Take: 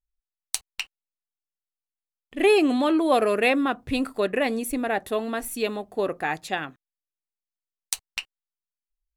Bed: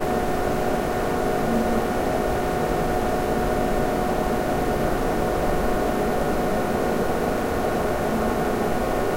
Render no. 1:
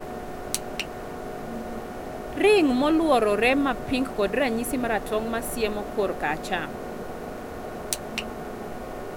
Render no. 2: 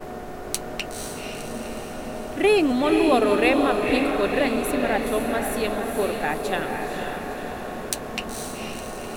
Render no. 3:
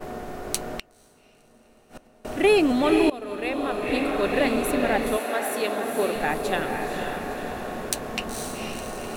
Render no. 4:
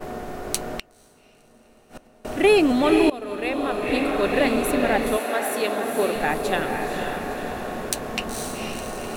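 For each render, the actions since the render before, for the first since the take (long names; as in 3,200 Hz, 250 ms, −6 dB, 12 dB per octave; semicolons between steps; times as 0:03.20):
mix in bed −12 dB
feedback delay with all-pass diffusion 496 ms, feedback 55%, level −4 dB
0:00.78–0:02.25: gate with flip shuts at −24 dBFS, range −24 dB; 0:03.10–0:04.46: fade in, from −21 dB; 0:05.16–0:06.14: high-pass filter 510 Hz → 160 Hz
level +2 dB; brickwall limiter −3 dBFS, peak gain reduction 1 dB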